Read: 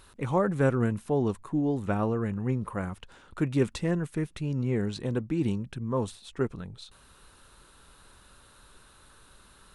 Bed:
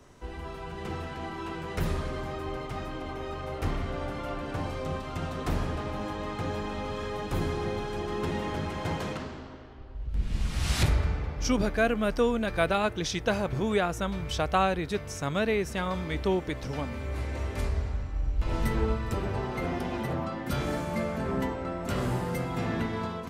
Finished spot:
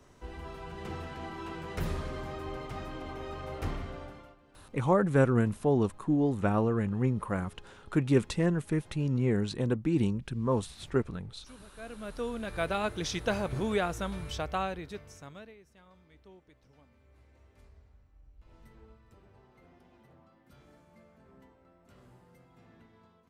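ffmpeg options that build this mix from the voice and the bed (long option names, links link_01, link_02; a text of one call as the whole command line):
ffmpeg -i stem1.wav -i stem2.wav -filter_complex "[0:a]adelay=4550,volume=0.5dB[link_01];[1:a]volume=19.5dB,afade=type=out:start_time=3.64:duration=0.72:silence=0.0749894,afade=type=in:start_time=11.73:duration=1.32:silence=0.0668344,afade=type=out:start_time=13.83:duration=1.72:silence=0.0530884[link_02];[link_01][link_02]amix=inputs=2:normalize=0" out.wav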